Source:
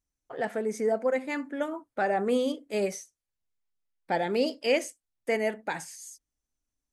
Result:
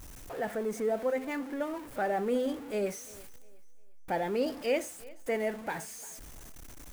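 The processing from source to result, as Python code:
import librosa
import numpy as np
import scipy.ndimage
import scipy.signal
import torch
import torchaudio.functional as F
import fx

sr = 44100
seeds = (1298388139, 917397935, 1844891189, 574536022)

y = x + 0.5 * 10.0 ** (-34.5 / 20.0) * np.sign(x)
y = fx.peak_eq(y, sr, hz=4700.0, db=-6.0, octaves=1.8)
y = fx.echo_thinned(y, sr, ms=350, feedback_pct=35, hz=160.0, wet_db=-21.5)
y = y * librosa.db_to_amplitude(-4.5)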